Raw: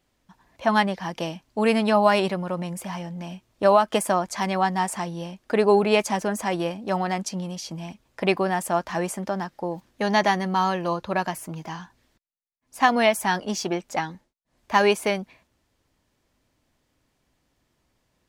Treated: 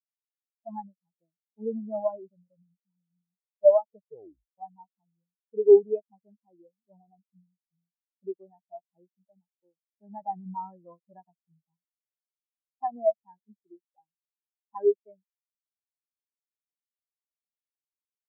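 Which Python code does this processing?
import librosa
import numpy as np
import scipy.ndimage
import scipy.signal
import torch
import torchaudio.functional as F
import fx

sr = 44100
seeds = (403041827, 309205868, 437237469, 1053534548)

y = fx.leveller(x, sr, passes=1, at=(10.21, 11.77))
y = fx.edit(y, sr, fx.tape_stop(start_s=3.96, length_s=0.62), tone=tone)
y = fx.high_shelf(y, sr, hz=2200.0, db=-7.5)
y = fx.spectral_expand(y, sr, expansion=4.0)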